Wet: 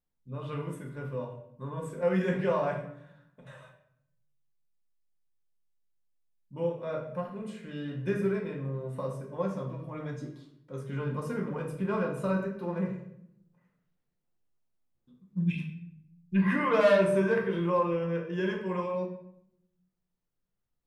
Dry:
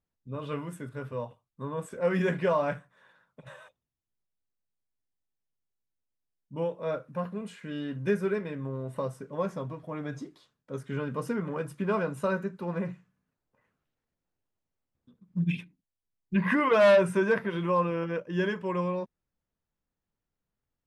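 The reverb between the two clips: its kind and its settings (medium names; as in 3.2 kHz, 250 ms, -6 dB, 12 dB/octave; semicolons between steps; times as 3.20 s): simulated room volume 170 m³, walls mixed, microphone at 0.89 m; trim -5 dB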